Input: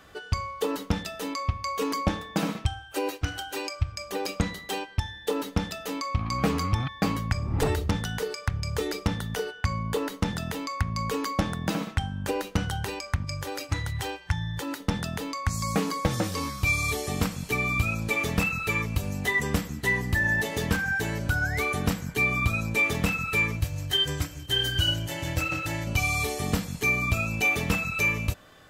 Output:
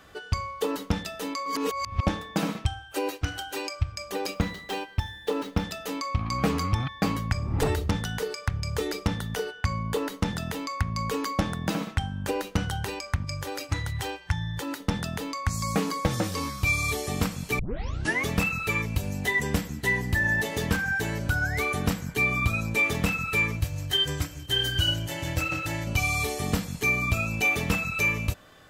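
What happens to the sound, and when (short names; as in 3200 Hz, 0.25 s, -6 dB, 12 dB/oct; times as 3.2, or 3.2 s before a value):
1.46–2.03 reverse
4.34–5.64 median filter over 5 samples
17.59 tape start 0.68 s
18.81–20.14 notch 1200 Hz, Q 10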